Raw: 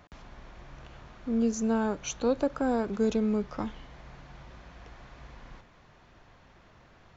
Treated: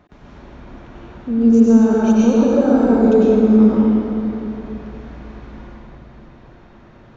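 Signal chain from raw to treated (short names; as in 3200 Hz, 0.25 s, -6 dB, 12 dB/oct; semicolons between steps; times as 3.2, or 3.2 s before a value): high shelf 2800 Hz -8 dB; small resonant body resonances 230/340/3700 Hz, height 7 dB, ringing for 30 ms; reverb RT60 3.1 s, pre-delay 89 ms, DRR -7.5 dB; gain +1.5 dB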